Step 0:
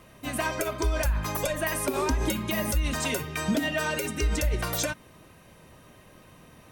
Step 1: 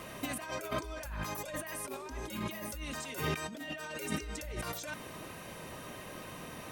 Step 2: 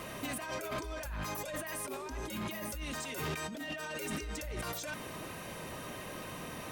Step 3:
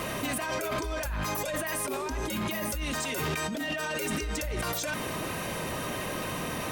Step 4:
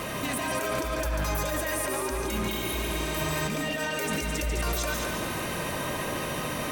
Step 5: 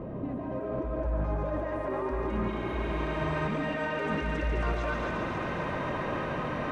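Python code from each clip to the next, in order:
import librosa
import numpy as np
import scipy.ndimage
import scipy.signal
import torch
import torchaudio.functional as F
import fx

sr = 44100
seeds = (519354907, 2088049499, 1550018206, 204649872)

y1 = fx.low_shelf(x, sr, hz=150.0, db=-9.5)
y1 = fx.over_compress(y1, sr, threshold_db=-40.0, ratio=-1.0)
y2 = 10.0 ** (-36.0 / 20.0) * np.tanh(y1 / 10.0 ** (-36.0 / 20.0))
y2 = y2 * librosa.db_to_amplitude(3.0)
y3 = fx.env_flatten(y2, sr, amount_pct=50)
y3 = y3 * librosa.db_to_amplitude(5.5)
y4 = fx.echo_heads(y3, sr, ms=71, heads='second and third', feedback_pct=53, wet_db=-6.0)
y4 = fx.spec_repair(y4, sr, seeds[0], start_s=2.55, length_s=0.83, low_hz=210.0, high_hz=9400.0, source='both')
y5 = fx.filter_sweep_lowpass(y4, sr, from_hz=480.0, to_hz=1600.0, start_s=0.34, end_s=3.01, q=0.76)
y5 = fx.echo_wet_highpass(y5, sr, ms=268, feedback_pct=75, hz=1400.0, wet_db=-4.5)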